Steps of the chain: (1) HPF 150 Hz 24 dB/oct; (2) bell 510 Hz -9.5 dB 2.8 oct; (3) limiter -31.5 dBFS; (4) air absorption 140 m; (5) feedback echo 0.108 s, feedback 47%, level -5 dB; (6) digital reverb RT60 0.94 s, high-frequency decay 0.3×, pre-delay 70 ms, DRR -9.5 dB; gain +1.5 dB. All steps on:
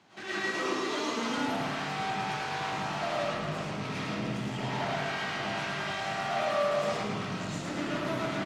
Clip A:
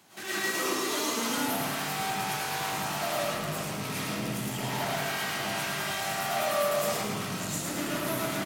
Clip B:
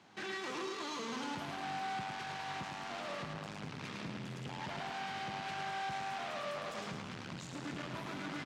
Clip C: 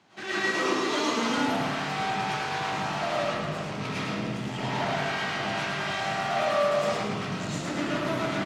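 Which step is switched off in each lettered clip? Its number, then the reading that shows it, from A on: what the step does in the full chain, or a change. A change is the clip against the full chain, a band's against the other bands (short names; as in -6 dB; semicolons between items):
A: 4, 8 kHz band +11.5 dB; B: 6, echo-to-direct 11.0 dB to -4.0 dB; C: 3, mean gain reduction 3.5 dB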